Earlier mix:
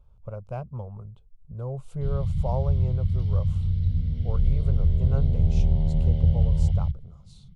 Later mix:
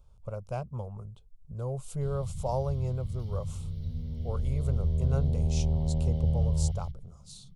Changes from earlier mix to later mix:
first sound −10.0 dB
master: add bass and treble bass −2 dB, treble +14 dB

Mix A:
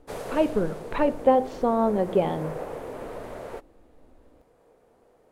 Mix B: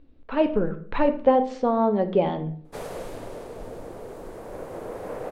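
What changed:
speech: send +7.0 dB
background: entry +2.65 s

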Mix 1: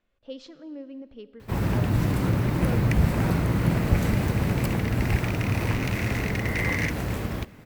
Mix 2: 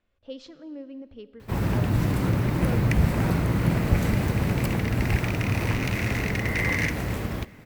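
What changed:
speech: add parametric band 83 Hz +13.5 dB 0.24 octaves
second sound: send +10.0 dB

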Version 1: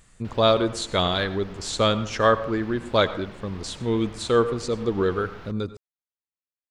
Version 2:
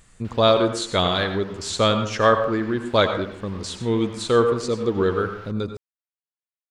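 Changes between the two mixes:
speech: send +8.0 dB
background: add high-pass filter 700 Hz

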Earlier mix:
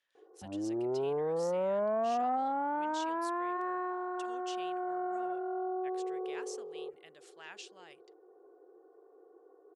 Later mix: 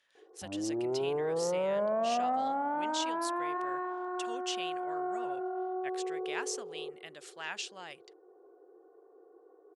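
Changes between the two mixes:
speech +9.5 dB
reverb: on, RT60 2.9 s

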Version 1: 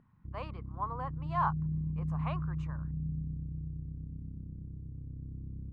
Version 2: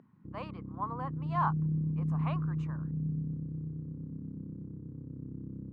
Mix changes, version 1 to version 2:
background +11.0 dB
master: add high-pass filter 230 Hz 12 dB per octave

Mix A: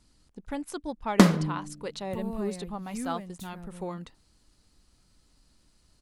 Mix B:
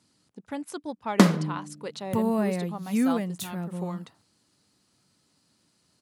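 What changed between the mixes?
second sound +12.0 dB
master: add high-pass filter 110 Hz 24 dB per octave

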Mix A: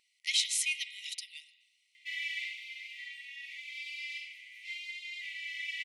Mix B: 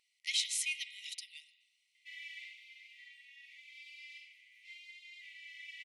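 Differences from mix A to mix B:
speech −4.0 dB
background −11.0 dB

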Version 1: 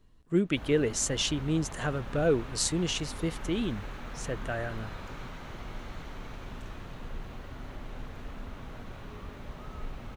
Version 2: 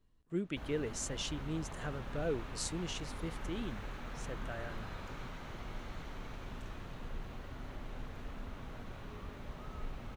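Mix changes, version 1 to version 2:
speech −10.5 dB
background −3.5 dB

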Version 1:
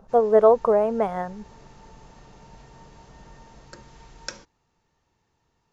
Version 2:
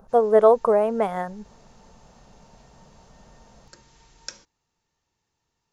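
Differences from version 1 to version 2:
background −8.5 dB
master: add high-shelf EQ 3,000 Hz +10.5 dB

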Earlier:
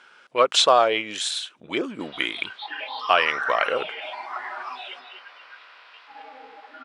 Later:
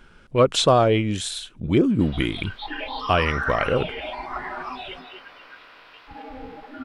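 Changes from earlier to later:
speech −4.0 dB
master: remove band-pass filter 720–7,800 Hz

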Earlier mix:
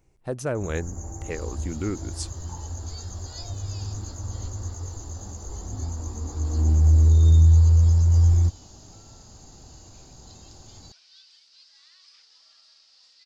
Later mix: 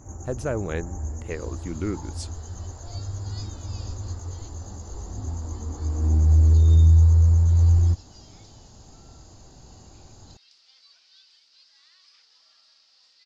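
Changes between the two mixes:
first sound: entry −0.55 s
master: add high-shelf EQ 6,600 Hz −8.5 dB

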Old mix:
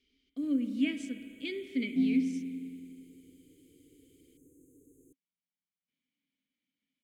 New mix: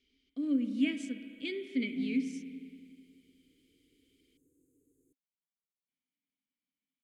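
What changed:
first sound −11.0 dB
second sound −8.0 dB

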